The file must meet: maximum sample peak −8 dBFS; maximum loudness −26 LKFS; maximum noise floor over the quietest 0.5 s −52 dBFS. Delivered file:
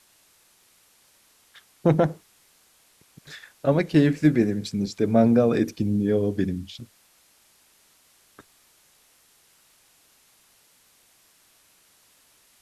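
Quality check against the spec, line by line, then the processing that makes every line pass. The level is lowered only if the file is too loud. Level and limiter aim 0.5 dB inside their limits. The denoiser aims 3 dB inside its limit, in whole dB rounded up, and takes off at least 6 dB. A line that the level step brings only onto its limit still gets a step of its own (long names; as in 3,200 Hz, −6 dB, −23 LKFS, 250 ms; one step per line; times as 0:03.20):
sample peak −5.5 dBFS: out of spec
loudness −22.5 LKFS: out of spec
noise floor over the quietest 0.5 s −60 dBFS: in spec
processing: level −4 dB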